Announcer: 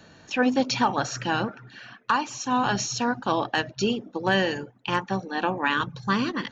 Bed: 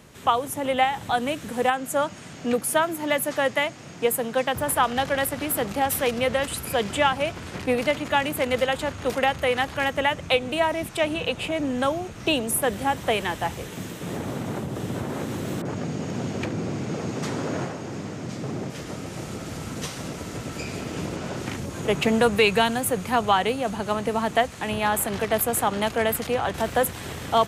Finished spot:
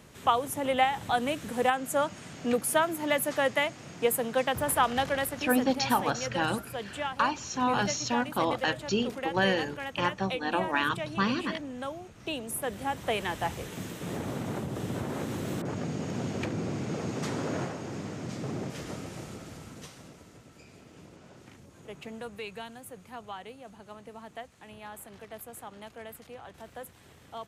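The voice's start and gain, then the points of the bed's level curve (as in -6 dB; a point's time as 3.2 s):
5.10 s, -3.5 dB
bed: 5 s -3.5 dB
5.91 s -13 dB
12.16 s -13 dB
13.45 s -4 dB
18.91 s -4 dB
20.48 s -21 dB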